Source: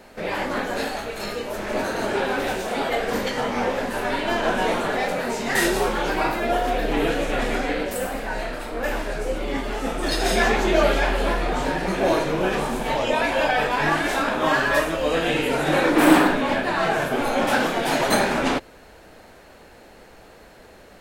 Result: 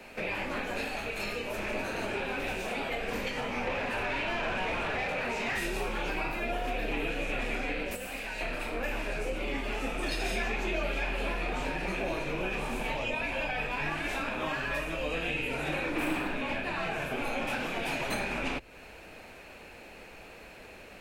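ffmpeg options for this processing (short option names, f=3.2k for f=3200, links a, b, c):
-filter_complex "[0:a]asettb=1/sr,asplit=3[a][b][c];[a]atrim=end=3.674[d];[b]atrim=start=3.67:end=5.58,asetpts=PTS-STARTPTS,afade=t=in:d=0.004:c=qsin,afade=t=out:st=1.906:d=0.004:c=qsin,asplit=2[e][f];[f]highpass=f=720:p=1,volume=21dB,asoftclip=type=tanh:threshold=-10dB[g];[e][g]amix=inputs=2:normalize=0,lowpass=f=2.2k:p=1,volume=-6dB[h];[c]atrim=start=5.576[i];[d][h]acrossfade=d=0.004:c1=hsin:c2=qsin[j];[j][i]acrossfade=d=0.004:c1=qsin:c2=hsin,asettb=1/sr,asplit=3[k][l][m];[k]atrim=end=7.954[n];[l]atrim=start=7.95:end=8.41,asetpts=PTS-STARTPTS,afade=t=in:d=0.004:c=qsin,afade=t=out:st=0.456:d=0.004:c=qsin,acrossover=split=410|2200[o][p][q];[o]acompressor=threshold=-41dB:ratio=4[r];[p]acompressor=threshold=-41dB:ratio=4[s];[q]acompressor=threshold=-38dB:ratio=4[t];[r][s][t]amix=inputs=3:normalize=0[u];[m]atrim=start=8.406[v];[n][u]acrossfade=d=0.004:c1=hsin:c2=qsin[w];[w][v]acrossfade=d=0.004:c1=qsin:c2=hsin,equalizer=f=2.5k:w=4.1:g=13.5,acrossover=split=100|200[x][y][z];[x]acompressor=threshold=-32dB:ratio=4[aa];[y]acompressor=threshold=-45dB:ratio=4[ab];[z]acompressor=threshold=-30dB:ratio=4[ac];[aa][ab][ac]amix=inputs=3:normalize=0,volume=-3dB"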